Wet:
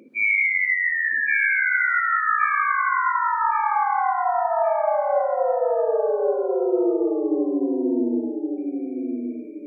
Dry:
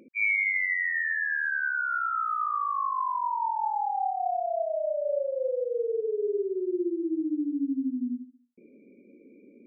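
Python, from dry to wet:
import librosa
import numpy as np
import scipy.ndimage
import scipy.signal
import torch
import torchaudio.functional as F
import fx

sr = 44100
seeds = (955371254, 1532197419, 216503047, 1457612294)

y = scipy.signal.sosfilt(scipy.signal.butter(2, 150.0, 'highpass', fs=sr, output='sos'), x)
y = fx.echo_feedback(y, sr, ms=1119, feedback_pct=34, wet_db=-4)
y = fx.rev_gated(y, sr, seeds[0], gate_ms=170, shape='rising', drr_db=4.5)
y = y * librosa.db_to_amplitude(4.5)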